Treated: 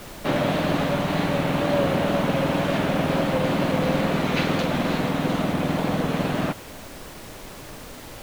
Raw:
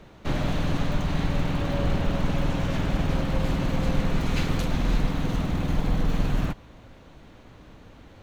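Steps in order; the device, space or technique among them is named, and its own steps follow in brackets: horn gramophone (band-pass 200–4300 Hz; peaking EQ 610 Hz +4.5 dB 0.42 oct; wow and flutter; pink noise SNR 17 dB); trim +7 dB

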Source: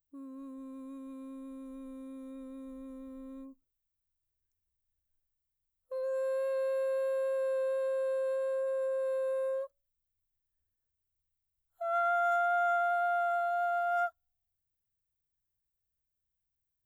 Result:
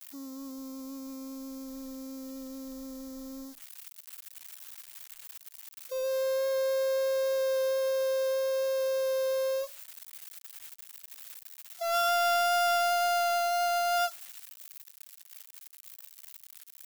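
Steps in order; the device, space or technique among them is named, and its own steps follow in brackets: budget class-D amplifier (dead-time distortion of 0.16 ms; zero-crossing glitches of -34 dBFS); trim +3.5 dB

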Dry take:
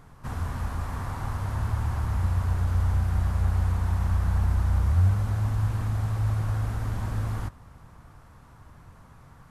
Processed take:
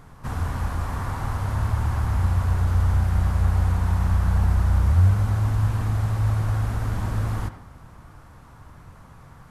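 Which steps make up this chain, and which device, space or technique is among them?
filtered reverb send (on a send: high-pass 210 Hz + low-pass 3.5 kHz + reverberation RT60 0.55 s, pre-delay 58 ms, DRR 9.5 dB); on the sum: trim +4 dB

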